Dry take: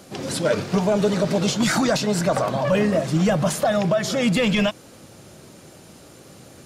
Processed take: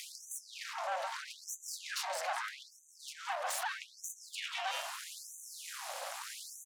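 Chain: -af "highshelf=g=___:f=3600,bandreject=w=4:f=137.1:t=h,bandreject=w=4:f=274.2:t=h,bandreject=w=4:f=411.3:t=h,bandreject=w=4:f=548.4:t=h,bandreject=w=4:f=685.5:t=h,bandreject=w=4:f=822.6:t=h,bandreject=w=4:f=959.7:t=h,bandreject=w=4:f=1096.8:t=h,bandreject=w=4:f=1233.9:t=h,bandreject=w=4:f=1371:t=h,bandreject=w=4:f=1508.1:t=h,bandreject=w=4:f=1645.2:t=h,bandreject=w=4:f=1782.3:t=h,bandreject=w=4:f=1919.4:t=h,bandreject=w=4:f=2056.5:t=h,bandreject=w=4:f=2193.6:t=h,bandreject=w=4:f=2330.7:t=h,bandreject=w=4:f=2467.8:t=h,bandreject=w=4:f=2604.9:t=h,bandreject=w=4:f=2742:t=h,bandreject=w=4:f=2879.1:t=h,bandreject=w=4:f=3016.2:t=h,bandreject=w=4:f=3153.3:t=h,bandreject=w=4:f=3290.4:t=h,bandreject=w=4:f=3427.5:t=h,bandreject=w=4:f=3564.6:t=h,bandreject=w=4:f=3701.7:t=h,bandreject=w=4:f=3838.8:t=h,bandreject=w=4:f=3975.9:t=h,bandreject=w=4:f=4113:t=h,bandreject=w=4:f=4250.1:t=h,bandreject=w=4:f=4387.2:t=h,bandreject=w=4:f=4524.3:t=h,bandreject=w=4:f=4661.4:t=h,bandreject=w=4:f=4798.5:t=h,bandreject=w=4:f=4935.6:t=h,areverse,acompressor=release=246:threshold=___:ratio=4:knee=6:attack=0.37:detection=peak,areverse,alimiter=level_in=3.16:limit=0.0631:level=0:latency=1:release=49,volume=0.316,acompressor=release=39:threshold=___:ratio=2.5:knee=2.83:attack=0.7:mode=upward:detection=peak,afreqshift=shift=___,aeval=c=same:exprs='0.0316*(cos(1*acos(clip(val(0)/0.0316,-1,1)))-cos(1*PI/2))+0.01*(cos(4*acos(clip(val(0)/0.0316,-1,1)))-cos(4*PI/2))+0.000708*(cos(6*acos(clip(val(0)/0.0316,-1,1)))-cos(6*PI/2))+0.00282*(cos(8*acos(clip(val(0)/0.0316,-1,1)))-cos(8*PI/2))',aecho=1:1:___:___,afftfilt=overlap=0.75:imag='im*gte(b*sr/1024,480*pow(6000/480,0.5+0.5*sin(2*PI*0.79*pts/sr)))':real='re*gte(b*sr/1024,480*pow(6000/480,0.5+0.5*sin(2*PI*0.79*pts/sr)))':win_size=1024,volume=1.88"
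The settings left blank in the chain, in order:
-5, 0.0316, 0.00631, 150, 751, 0.0668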